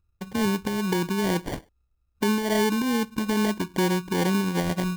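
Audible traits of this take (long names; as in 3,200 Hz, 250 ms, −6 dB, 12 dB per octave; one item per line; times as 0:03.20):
phaser sweep stages 12, 2.4 Hz, lowest notch 710–4,300 Hz
aliases and images of a low sample rate 1,300 Hz, jitter 0%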